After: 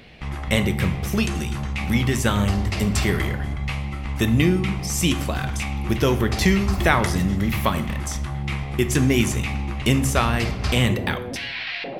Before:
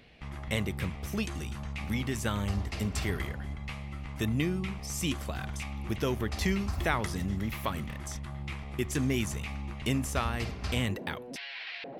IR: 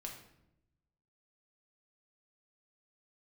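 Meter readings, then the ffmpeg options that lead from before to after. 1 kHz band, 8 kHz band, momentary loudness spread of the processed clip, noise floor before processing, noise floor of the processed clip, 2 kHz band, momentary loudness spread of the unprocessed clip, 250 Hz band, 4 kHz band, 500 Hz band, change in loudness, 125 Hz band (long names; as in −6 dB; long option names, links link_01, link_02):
+11.0 dB, +10.5 dB, 9 LU, −42 dBFS, −31 dBFS, +11.0 dB, 9 LU, +11.0 dB, +11.0 dB, +11.0 dB, +11.0 dB, +11.0 dB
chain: -filter_complex "[0:a]asplit=2[link_01][link_02];[1:a]atrim=start_sample=2205[link_03];[link_02][link_03]afir=irnorm=-1:irlink=0,volume=1dB[link_04];[link_01][link_04]amix=inputs=2:normalize=0,volume=6.5dB"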